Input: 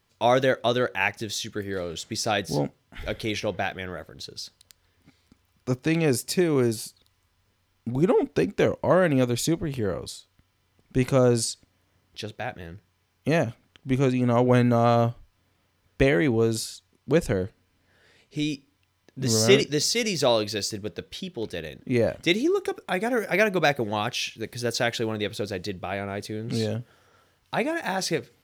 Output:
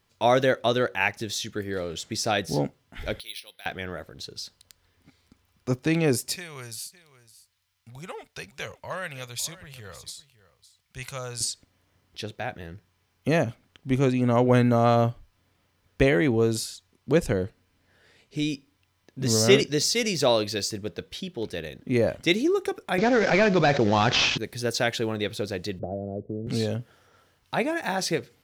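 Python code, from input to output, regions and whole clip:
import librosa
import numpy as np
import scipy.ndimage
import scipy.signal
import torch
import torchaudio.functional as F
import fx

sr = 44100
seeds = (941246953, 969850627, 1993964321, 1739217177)

y = fx.chain(x, sr, fx.bandpass_q(hz=3900.0, q=3.4),
    fx.resample_bad(factor=3, down='filtered', up='hold'), at=(3.2, 3.66))
y = fx.chain(y, sr, fx.highpass(hz=60.0, slope=12),
    fx.tone_stack(knobs='10-0-10'),
    fx.echo_single(ms=559, db=-17.5), at=(6.36, 11.41))
y = fx.chain(y, sr, fx.cvsd(bps=32000),
    fx.env_flatten(amount_pct=70), at=(22.98, 24.38))
y = fx.chain(y, sr, fx.cheby1_lowpass(hz=620.0, order=4),
    fx.band_squash(depth_pct=100), at=(25.79, 26.47))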